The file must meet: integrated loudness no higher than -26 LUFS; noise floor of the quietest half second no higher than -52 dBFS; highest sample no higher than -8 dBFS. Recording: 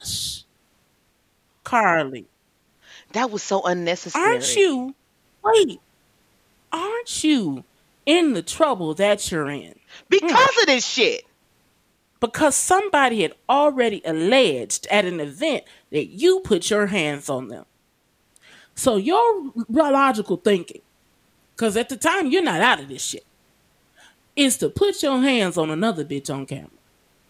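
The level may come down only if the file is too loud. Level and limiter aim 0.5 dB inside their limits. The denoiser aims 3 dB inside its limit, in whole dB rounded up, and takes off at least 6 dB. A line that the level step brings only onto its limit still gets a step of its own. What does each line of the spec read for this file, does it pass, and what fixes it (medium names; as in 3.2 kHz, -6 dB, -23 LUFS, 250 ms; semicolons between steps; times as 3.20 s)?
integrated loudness -20.5 LUFS: fail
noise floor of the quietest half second -65 dBFS: pass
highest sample -2.0 dBFS: fail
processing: trim -6 dB; peak limiter -8.5 dBFS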